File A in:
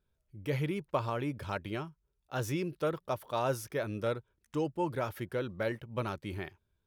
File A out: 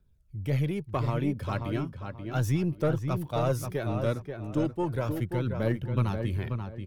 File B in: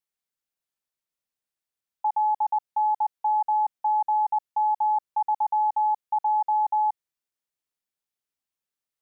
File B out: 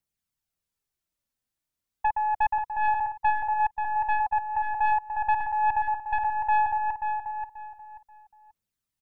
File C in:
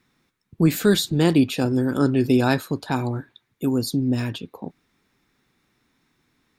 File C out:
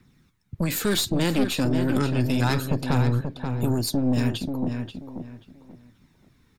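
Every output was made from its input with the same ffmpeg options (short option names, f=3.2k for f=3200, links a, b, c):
-filter_complex "[0:a]bass=f=250:g=11,treble=f=4k:g=2,acrossover=split=260|980|7000[a][b][c][d];[a]acompressor=threshold=-23dB:ratio=6[e];[b]alimiter=limit=-20.5dB:level=0:latency=1[f];[e][f][c][d]amix=inputs=4:normalize=0,aphaser=in_gain=1:out_gain=1:delay=4:decay=0.38:speed=0.35:type=triangular,aeval=exprs='0.422*(cos(1*acos(clip(val(0)/0.422,-1,1)))-cos(1*PI/2))+0.119*(cos(4*acos(clip(val(0)/0.422,-1,1)))-cos(4*PI/2))+0.106*(cos(5*acos(clip(val(0)/0.422,-1,1)))-cos(5*PI/2))':c=same,asplit=2[g][h];[h]adelay=534,lowpass=f=2.5k:p=1,volume=-6dB,asplit=2[i][j];[j]adelay=534,lowpass=f=2.5k:p=1,volume=0.27,asplit=2[k][l];[l]adelay=534,lowpass=f=2.5k:p=1,volume=0.27[m];[g][i][k][m]amix=inputs=4:normalize=0,volume=-7.5dB"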